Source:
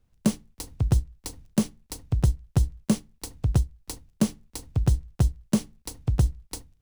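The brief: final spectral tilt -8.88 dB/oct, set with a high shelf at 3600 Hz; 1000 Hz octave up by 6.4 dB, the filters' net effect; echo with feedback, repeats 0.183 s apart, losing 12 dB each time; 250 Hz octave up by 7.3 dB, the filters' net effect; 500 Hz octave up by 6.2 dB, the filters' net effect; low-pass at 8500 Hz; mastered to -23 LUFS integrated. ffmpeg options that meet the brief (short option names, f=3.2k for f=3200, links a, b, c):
-af "lowpass=8.5k,equalizer=f=250:t=o:g=8.5,equalizer=f=500:t=o:g=3.5,equalizer=f=1k:t=o:g=6,highshelf=f=3.6k:g=5.5,aecho=1:1:183|366|549:0.251|0.0628|0.0157,volume=0.5dB"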